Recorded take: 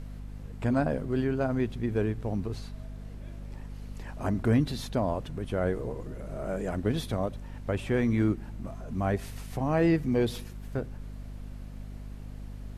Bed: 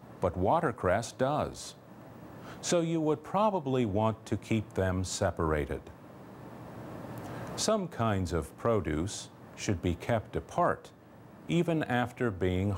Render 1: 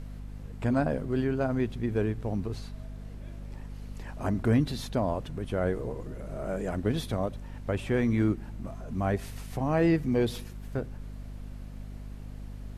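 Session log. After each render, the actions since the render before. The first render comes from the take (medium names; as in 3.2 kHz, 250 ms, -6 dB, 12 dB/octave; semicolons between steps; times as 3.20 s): no audible change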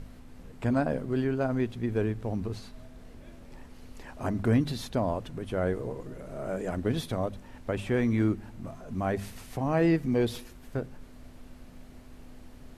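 de-hum 50 Hz, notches 4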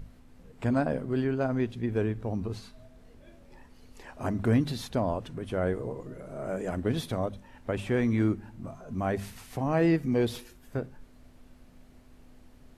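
noise print and reduce 6 dB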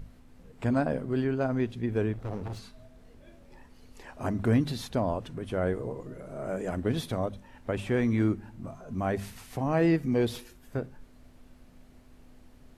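2.13–2.59 s: comb filter that takes the minimum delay 1.5 ms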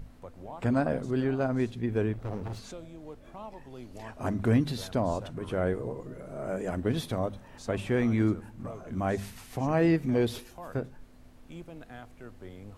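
add bed -16.5 dB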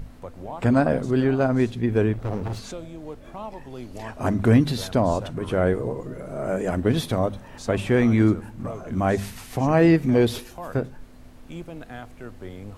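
trim +7.5 dB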